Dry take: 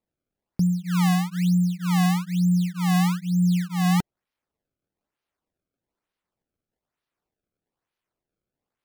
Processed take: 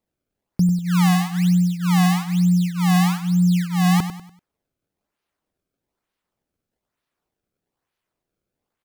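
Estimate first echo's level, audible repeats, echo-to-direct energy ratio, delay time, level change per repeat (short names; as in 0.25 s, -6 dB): -10.5 dB, 3, -10.0 dB, 97 ms, -9.0 dB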